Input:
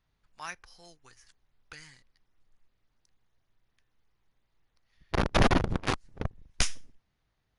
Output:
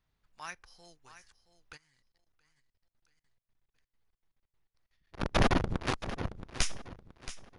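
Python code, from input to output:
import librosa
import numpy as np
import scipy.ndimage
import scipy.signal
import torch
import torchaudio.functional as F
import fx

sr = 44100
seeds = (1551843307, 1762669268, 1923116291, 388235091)

y = fx.echo_feedback(x, sr, ms=674, feedback_pct=33, wet_db=-13)
y = fx.level_steps(y, sr, step_db=23, at=(1.76, 5.2), fade=0.02)
y = F.gain(torch.from_numpy(y), -3.0).numpy()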